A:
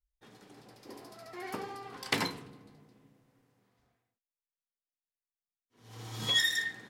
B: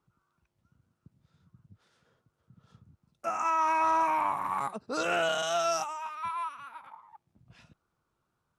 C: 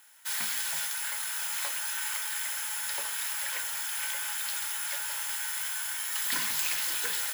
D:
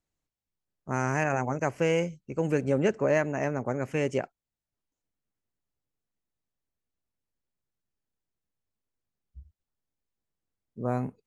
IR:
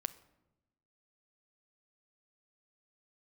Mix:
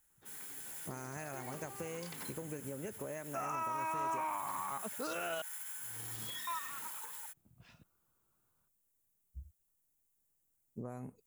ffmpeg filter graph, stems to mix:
-filter_complex "[0:a]acompressor=threshold=0.01:ratio=4,volume=0.447[s0];[1:a]alimiter=limit=0.0794:level=0:latency=1,adelay=100,volume=0.631,asplit=3[s1][s2][s3];[s1]atrim=end=5.42,asetpts=PTS-STARTPTS,afade=t=out:st=5.416:d=0.004:c=hsin[s4];[s2]atrim=start=5.42:end=6.47,asetpts=PTS-STARTPTS,volume=0[s5];[s3]atrim=start=6.47,asetpts=PTS-STARTPTS,afade=t=in:d=0.004:c=hsin[s6];[s4][s5][s6]concat=n=3:v=0:a=1[s7];[2:a]lowpass=f=2400:p=1,dynaudnorm=f=270:g=9:m=3.98,alimiter=level_in=1.06:limit=0.0631:level=0:latency=1:release=112,volume=0.944,volume=0.106[s8];[3:a]acompressor=threshold=0.02:ratio=2.5,volume=1[s9];[s8][s9]amix=inputs=2:normalize=0,aexciter=amount=6:drive=4.9:freq=6700,acompressor=threshold=0.01:ratio=6,volume=1[s10];[s0][s7][s10]amix=inputs=3:normalize=0,alimiter=level_in=1.88:limit=0.0631:level=0:latency=1:release=56,volume=0.531"

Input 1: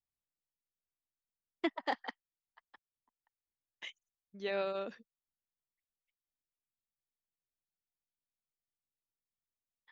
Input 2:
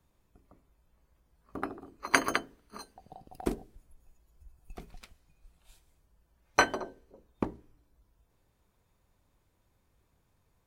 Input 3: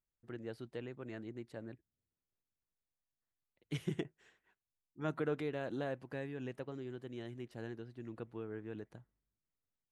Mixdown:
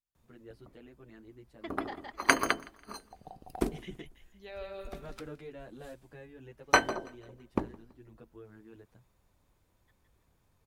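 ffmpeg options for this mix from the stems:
-filter_complex "[0:a]aphaser=in_gain=1:out_gain=1:delay=4.9:decay=0.32:speed=0.26:type=sinusoidal,volume=0.335,asplit=2[s0][s1];[s1]volume=0.596[s2];[1:a]adelay=150,volume=1.12,asplit=2[s3][s4];[s4]volume=0.0668[s5];[2:a]asplit=2[s6][s7];[s7]adelay=9.2,afreqshift=2.4[s8];[s6][s8]amix=inputs=2:normalize=1,volume=0.596[s9];[s2][s5]amix=inputs=2:normalize=0,aecho=0:1:165|330|495|660|825:1|0.37|0.137|0.0507|0.0187[s10];[s0][s3][s9][s10]amix=inputs=4:normalize=0"

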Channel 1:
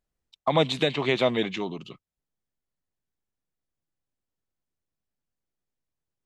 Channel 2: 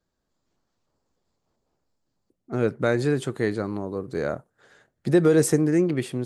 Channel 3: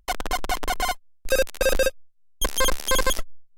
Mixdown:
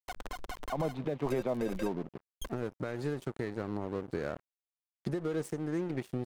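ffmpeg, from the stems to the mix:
-filter_complex "[0:a]lowpass=1000,acompressor=threshold=0.0631:ratio=2,adelay=250,volume=1.41[s0];[1:a]acompressor=threshold=0.0355:ratio=8,volume=1.06,asplit=2[s1][s2];[2:a]acompressor=threshold=0.0794:ratio=10,acrusher=bits=7:mix=0:aa=0.5,volume=0.316[s3];[s2]apad=whole_len=157571[s4];[s3][s4]sidechaincompress=threshold=0.00141:ratio=4:attack=35:release=631[s5];[s0][s1][s5]amix=inputs=3:normalize=0,highshelf=f=3000:g=-4.5,aeval=exprs='sgn(val(0))*max(abs(val(0))-0.00708,0)':c=same,alimiter=limit=0.075:level=0:latency=1:release=210"

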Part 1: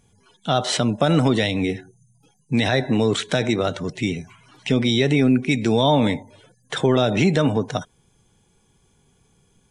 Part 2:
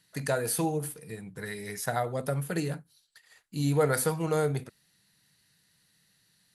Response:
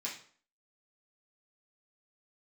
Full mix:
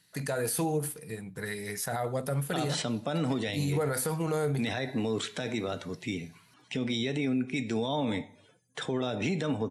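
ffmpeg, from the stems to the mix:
-filter_complex "[0:a]highpass=45,adelay=2050,volume=0.282,asplit=2[s0][s1];[s1]volume=0.282[s2];[1:a]volume=1.19,asplit=2[s3][s4];[s4]volume=0.0668[s5];[2:a]atrim=start_sample=2205[s6];[s2][s5]amix=inputs=2:normalize=0[s7];[s7][s6]afir=irnorm=-1:irlink=0[s8];[s0][s3][s8]amix=inputs=3:normalize=0,alimiter=limit=0.0841:level=0:latency=1:release=35"

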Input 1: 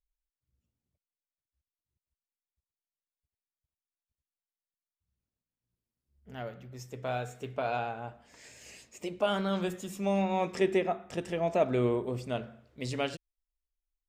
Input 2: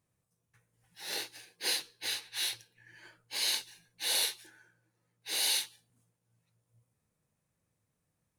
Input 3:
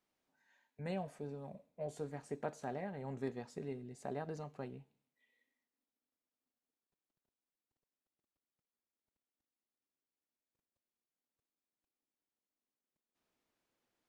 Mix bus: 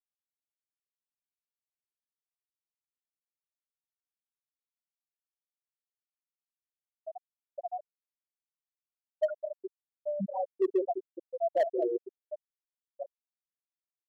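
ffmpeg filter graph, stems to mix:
-filter_complex "[0:a]lowpass=f=2200:w=0.5412,lowpass=f=2200:w=1.3066,equalizer=f=110:t=o:w=2.5:g=-7.5,volume=1.33,asplit=2[s0][s1];[s1]volume=0.473[s2];[1:a]adelay=850,volume=0.596[s3];[2:a]adelay=150,volume=0.398[s4];[s2]aecho=0:1:209:1[s5];[s0][s3][s4][s5]amix=inputs=4:normalize=0,afftfilt=real='re*gte(hypot(re,im),0.316)':imag='im*gte(hypot(re,im),0.316)':win_size=1024:overlap=0.75,volume=10.6,asoftclip=hard,volume=0.0944"

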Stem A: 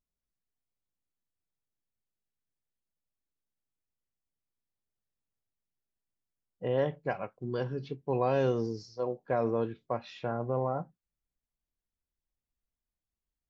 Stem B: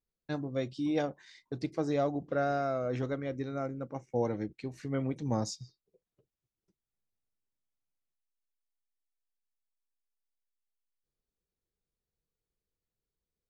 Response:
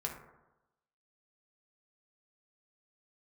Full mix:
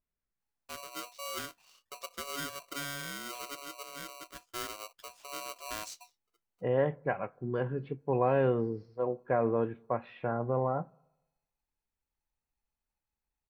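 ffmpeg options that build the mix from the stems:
-filter_complex "[0:a]lowpass=f=2200:w=0.5412,lowpass=f=2200:w=1.3066,volume=1,asplit=2[s0][s1];[s1]volume=0.0668[s2];[1:a]aeval=exprs='val(0)*sgn(sin(2*PI*850*n/s))':c=same,adelay=400,volume=0.266[s3];[2:a]atrim=start_sample=2205[s4];[s2][s4]afir=irnorm=-1:irlink=0[s5];[s0][s3][s5]amix=inputs=3:normalize=0,highshelf=f=2600:g=8"

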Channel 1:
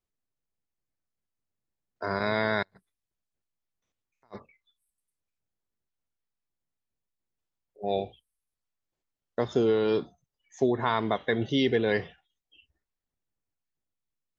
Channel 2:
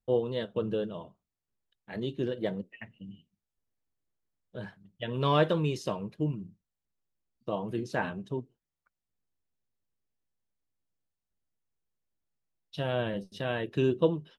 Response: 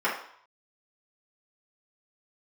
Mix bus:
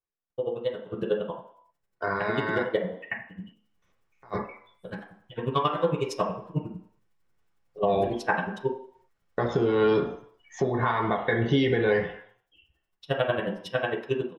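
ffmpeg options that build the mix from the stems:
-filter_complex "[0:a]asubboost=boost=2:cutoff=220,acompressor=threshold=0.0316:ratio=4,aemphasis=mode=reproduction:type=50fm,volume=0.944,afade=t=in:st=3.41:d=0.41:silence=0.354813,afade=t=out:st=11.81:d=0.6:silence=0.298538,asplit=2[s0][s1];[s1]volume=0.316[s2];[1:a]aeval=exprs='val(0)*pow(10,-38*(0.5-0.5*cos(2*PI*11*n/s))/20)':c=same,adelay=300,volume=0.794,asplit=2[s3][s4];[s4]volume=0.376[s5];[2:a]atrim=start_sample=2205[s6];[s2][s5]amix=inputs=2:normalize=0[s7];[s7][s6]afir=irnorm=-1:irlink=0[s8];[s0][s3][s8]amix=inputs=3:normalize=0,dynaudnorm=f=210:g=9:m=3.16,alimiter=limit=0.224:level=0:latency=1:release=285"

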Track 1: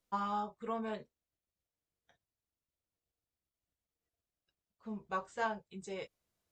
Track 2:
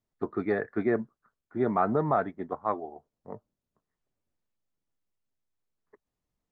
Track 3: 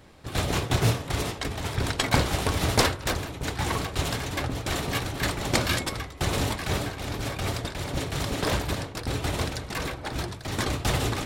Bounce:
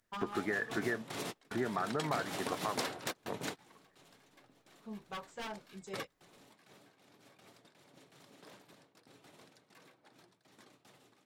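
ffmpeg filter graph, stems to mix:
-filter_complex "[0:a]aeval=exprs='0.0237*(abs(mod(val(0)/0.0237+3,4)-2)-1)':c=same,volume=0.708[s0];[1:a]equalizer=f=1700:t=o:w=0.72:g=14.5,alimiter=limit=0.158:level=0:latency=1:release=419,volume=1.26,asplit=2[s1][s2];[2:a]highpass=f=160:w=0.5412,highpass=f=160:w=1.3066,dynaudnorm=f=330:g=7:m=3.98,volume=0.282[s3];[s2]apad=whole_len=496484[s4];[s3][s4]sidechaingate=range=0.0355:threshold=0.00112:ratio=16:detection=peak[s5];[s0][s1][s5]amix=inputs=3:normalize=0,acompressor=threshold=0.0158:ratio=2.5"

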